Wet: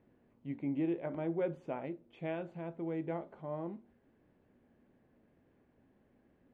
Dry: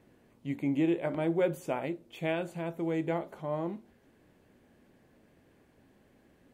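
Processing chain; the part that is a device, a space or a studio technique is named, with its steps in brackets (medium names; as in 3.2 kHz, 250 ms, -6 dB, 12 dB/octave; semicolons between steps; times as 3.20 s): phone in a pocket (low-pass 3.4 kHz 12 dB/octave; peaking EQ 240 Hz +3 dB 0.21 oct; treble shelf 2.2 kHz -8 dB); trim -6 dB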